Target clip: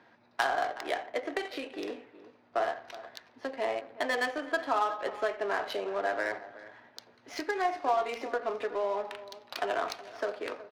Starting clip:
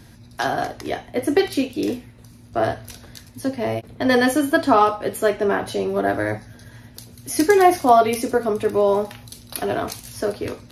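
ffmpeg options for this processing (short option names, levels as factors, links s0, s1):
-filter_complex "[0:a]acompressor=threshold=0.0794:ratio=8,asplit=2[s0][s1];[s1]aecho=0:1:369:0.158[s2];[s0][s2]amix=inputs=2:normalize=0,acrusher=bits=6:mode=log:mix=0:aa=0.000001,highpass=660,lowpass=5400,asplit=2[s3][s4];[s4]adelay=86,lowpass=f=4100:p=1,volume=0.158,asplit=2[s5][s6];[s6]adelay=86,lowpass=f=4100:p=1,volume=0.42,asplit=2[s7][s8];[s8]adelay=86,lowpass=f=4100:p=1,volume=0.42,asplit=2[s9][s10];[s10]adelay=86,lowpass=f=4100:p=1,volume=0.42[s11];[s5][s7][s9][s11]amix=inputs=4:normalize=0[s12];[s3][s12]amix=inputs=2:normalize=0,adynamicsmooth=sensitivity=6:basefreq=1600"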